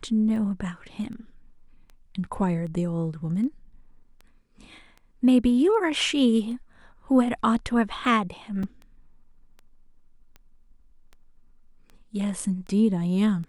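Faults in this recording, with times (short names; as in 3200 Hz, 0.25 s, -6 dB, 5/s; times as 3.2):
tick 78 rpm
8.63 gap 4 ms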